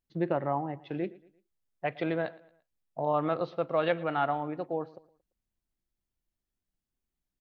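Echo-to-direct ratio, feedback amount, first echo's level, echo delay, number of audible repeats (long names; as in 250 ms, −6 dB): −20.5 dB, 40%, −21.0 dB, 114 ms, 2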